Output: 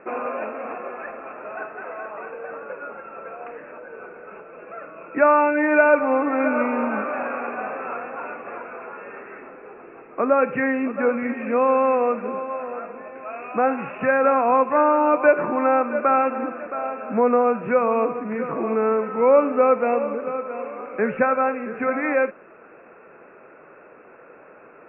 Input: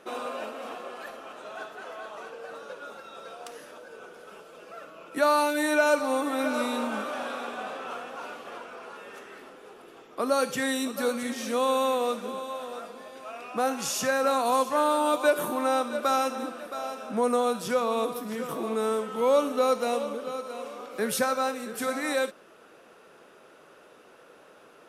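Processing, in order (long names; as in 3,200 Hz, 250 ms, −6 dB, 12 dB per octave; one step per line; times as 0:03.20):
Chebyshev low-pass filter 2,600 Hz, order 8
level +7 dB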